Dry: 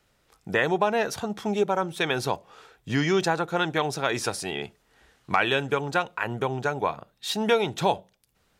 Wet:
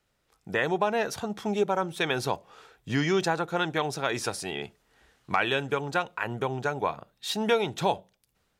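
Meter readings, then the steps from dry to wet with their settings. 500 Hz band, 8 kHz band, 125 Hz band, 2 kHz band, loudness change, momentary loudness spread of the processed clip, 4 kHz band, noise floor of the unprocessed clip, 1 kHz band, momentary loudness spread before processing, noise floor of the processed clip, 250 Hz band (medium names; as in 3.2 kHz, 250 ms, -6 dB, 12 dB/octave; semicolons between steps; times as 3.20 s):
-2.5 dB, -2.5 dB, -2.0 dB, -2.5 dB, -2.5 dB, 8 LU, -2.5 dB, -68 dBFS, -2.5 dB, 8 LU, -74 dBFS, -2.0 dB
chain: level rider gain up to 6 dB; trim -7.5 dB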